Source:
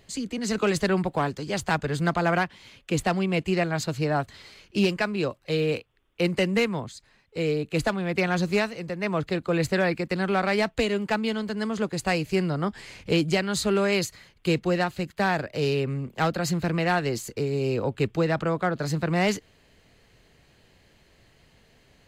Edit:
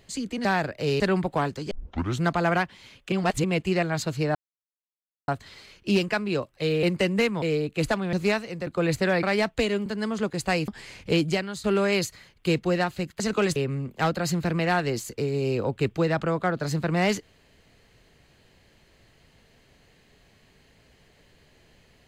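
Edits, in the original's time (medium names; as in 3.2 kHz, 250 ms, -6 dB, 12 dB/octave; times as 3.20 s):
0.45–0.81 s: swap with 15.20–15.75 s
1.52 s: tape start 0.50 s
2.93–3.25 s: reverse
4.16 s: insert silence 0.93 s
5.71–6.21 s: delete
6.80–7.38 s: delete
8.09–8.41 s: delete
8.95–9.38 s: delete
9.94–10.43 s: delete
11.06–11.45 s: delete
12.27–12.68 s: delete
13.26–13.64 s: fade out, to -14.5 dB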